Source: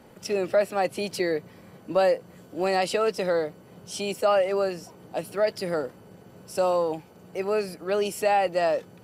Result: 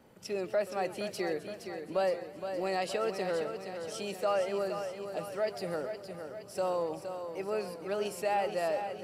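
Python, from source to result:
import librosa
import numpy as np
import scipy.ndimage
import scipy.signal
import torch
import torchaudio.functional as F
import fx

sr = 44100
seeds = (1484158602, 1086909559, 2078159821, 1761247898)

y = fx.wow_flutter(x, sr, seeds[0], rate_hz=2.1, depth_cents=17.0)
y = fx.echo_feedback(y, sr, ms=467, feedback_pct=54, wet_db=-8.0)
y = fx.echo_warbled(y, sr, ms=132, feedback_pct=58, rate_hz=2.8, cents=198, wet_db=-17.5)
y = y * librosa.db_to_amplitude(-8.5)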